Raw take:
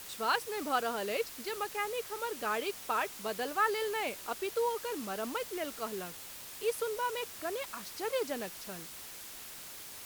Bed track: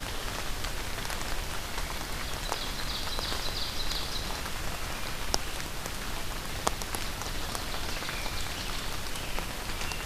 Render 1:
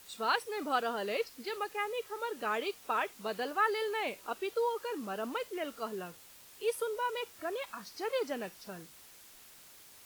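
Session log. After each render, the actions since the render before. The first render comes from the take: noise print and reduce 9 dB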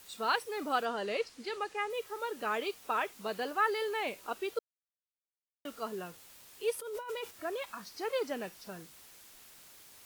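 0.85–1.9 polynomial smoothing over 9 samples; 4.59–5.65 mute; 6.79–7.31 negative-ratio compressor -40 dBFS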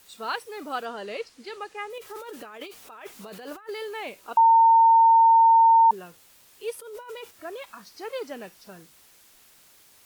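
1.98–3.69 negative-ratio compressor -41 dBFS; 4.37–5.91 bleep 910 Hz -12.5 dBFS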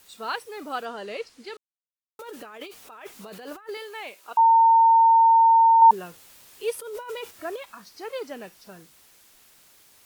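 1.57–2.19 mute; 3.77–4.39 HPF 700 Hz 6 dB/oct; 5.82–7.56 gain +4.5 dB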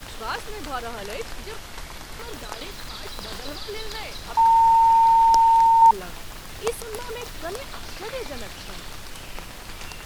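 add bed track -3 dB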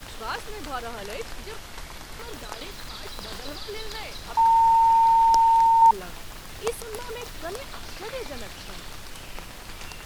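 gain -2 dB

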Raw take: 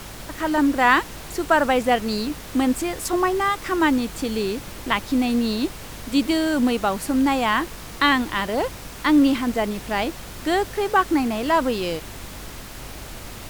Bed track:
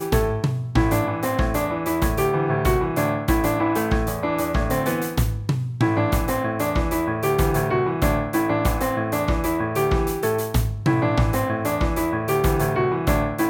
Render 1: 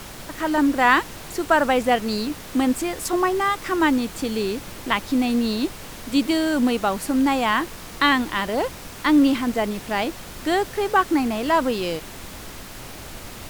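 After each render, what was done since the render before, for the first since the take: de-hum 50 Hz, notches 3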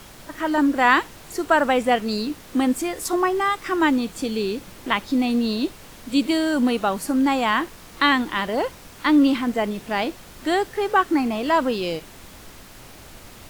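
noise print and reduce 6 dB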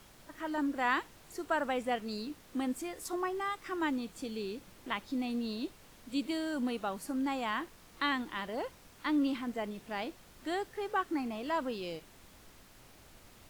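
gain -14 dB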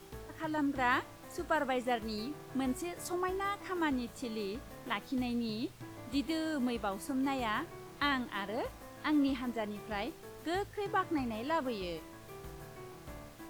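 add bed track -28.5 dB

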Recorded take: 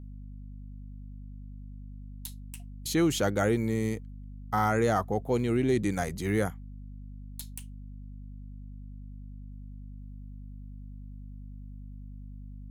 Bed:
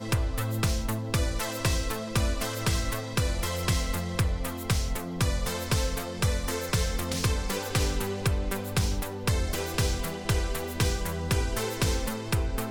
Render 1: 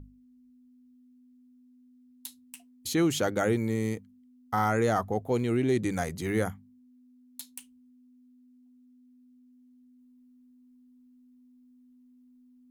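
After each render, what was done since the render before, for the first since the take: notches 50/100/150/200 Hz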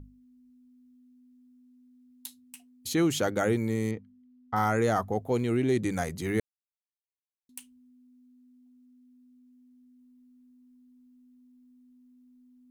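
2.26–2.91 notch comb 340 Hz; 3.91–4.56 air absorption 240 m; 6.4–7.49 mute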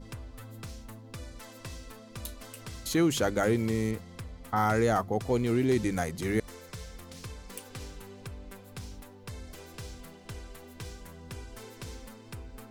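add bed -16 dB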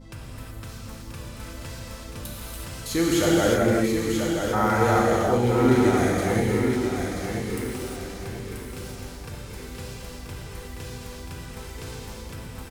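on a send: feedback echo 0.983 s, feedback 35%, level -6 dB; on the sum: non-linear reverb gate 0.4 s flat, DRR -5 dB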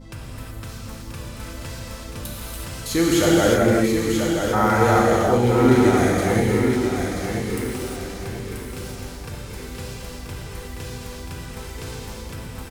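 gain +3.5 dB

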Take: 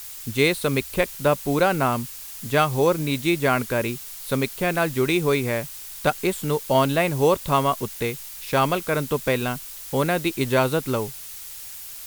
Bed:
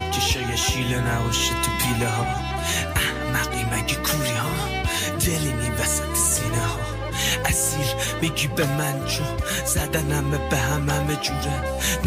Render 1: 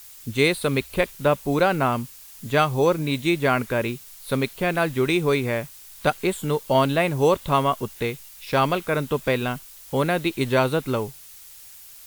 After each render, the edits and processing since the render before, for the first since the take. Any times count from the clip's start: noise print and reduce 7 dB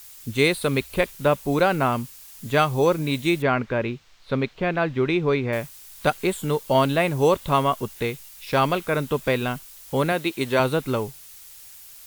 3.42–5.53 air absorption 190 m; 10.12–10.6 HPF 210 Hz 6 dB/oct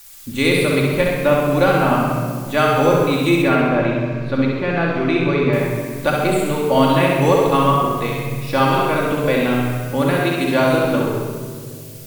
flutter echo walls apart 11.1 m, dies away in 0.86 s; shoebox room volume 3000 m³, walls mixed, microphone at 2.4 m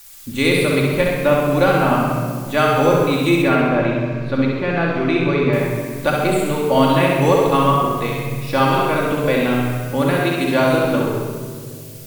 nothing audible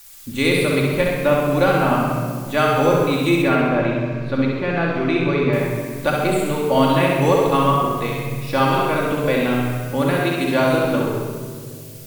gain -1.5 dB

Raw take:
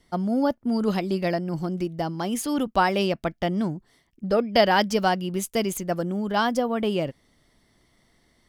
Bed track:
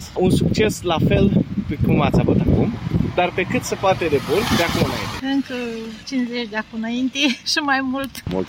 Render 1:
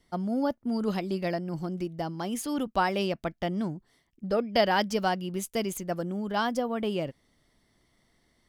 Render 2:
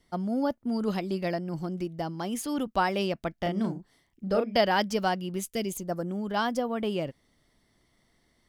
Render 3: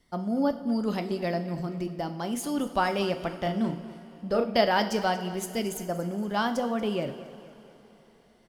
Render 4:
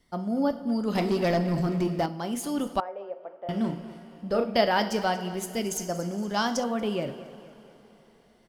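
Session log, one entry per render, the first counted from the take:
gain -5 dB
3.35–4.57 doubler 36 ms -4.5 dB; 5.4–6.07 bell 600 Hz -> 3900 Hz -13 dB 0.78 oct
feedback echo 0.233 s, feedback 42%, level -16.5 dB; two-slope reverb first 0.57 s, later 4.6 s, from -17 dB, DRR 8 dB
0.95–2.06 sample leveller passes 2; 2.8–3.49 ladder band-pass 620 Hz, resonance 50%; 5.71–6.64 bell 5900 Hz +12 dB 0.75 oct

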